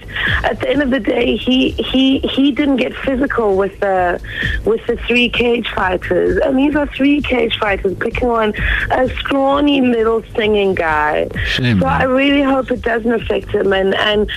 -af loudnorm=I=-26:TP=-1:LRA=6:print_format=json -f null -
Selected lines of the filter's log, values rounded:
"input_i" : "-14.8",
"input_tp" : "-2.5",
"input_lra" : "1.1",
"input_thresh" : "-24.8",